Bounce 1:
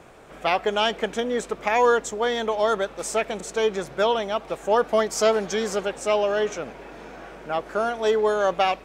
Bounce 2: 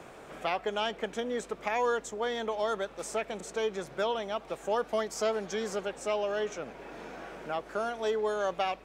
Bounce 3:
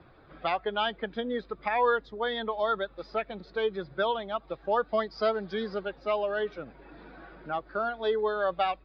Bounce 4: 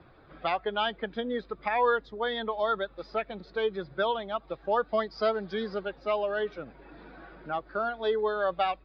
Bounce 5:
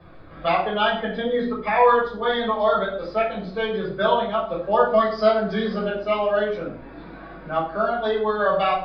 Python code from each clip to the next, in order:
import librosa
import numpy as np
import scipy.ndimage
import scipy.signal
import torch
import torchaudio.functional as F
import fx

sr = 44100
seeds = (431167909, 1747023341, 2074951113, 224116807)

y1 = fx.band_squash(x, sr, depth_pct=40)
y1 = F.gain(torch.from_numpy(y1), -9.0).numpy()
y2 = fx.bin_expand(y1, sr, power=1.5)
y2 = scipy.signal.sosfilt(scipy.signal.cheby1(6, 6, 5000.0, 'lowpass', fs=sr, output='sos'), y2)
y2 = fx.low_shelf(y2, sr, hz=250.0, db=4.0)
y2 = F.gain(torch.from_numpy(y2), 8.0).numpy()
y3 = y2
y4 = fx.room_shoebox(y3, sr, seeds[0], volume_m3=580.0, walls='furnished', distance_m=5.7)